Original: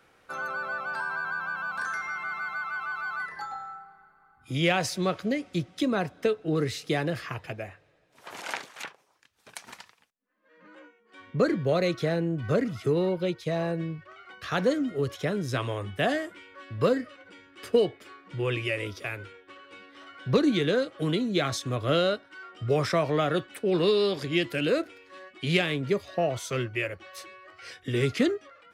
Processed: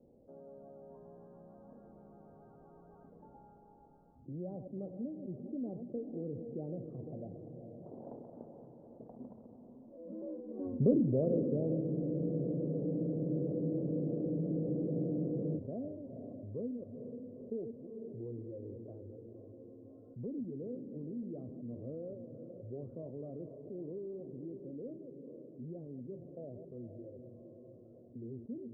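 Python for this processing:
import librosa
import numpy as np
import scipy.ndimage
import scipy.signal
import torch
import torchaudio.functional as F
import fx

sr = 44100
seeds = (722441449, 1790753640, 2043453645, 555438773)

p1 = fx.reverse_delay(x, sr, ms=123, wet_db=-12.0)
p2 = fx.doppler_pass(p1, sr, speed_mps=17, closest_m=2.3, pass_at_s=10.62)
p3 = fx.peak_eq(p2, sr, hz=240.0, db=11.0, octaves=0.27)
p4 = fx.mod_noise(p3, sr, seeds[0], snr_db=17)
p5 = scipy.signal.sosfilt(scipy.signal.butter(6, 600.0, 'lowpass', fs=sr, output='sos'), p4)
p6 = p5 + fx.echo_diffused(p5, sr, ms=485, feedback_pct=43, wet_db=-12.5, dry=0)
p7 = fx.spec_freeze(p6, sr, seeds[1], at_s=11.84, hold_s=3.72)
y = fx.env_flatten(p7, sr, amount_pct=50)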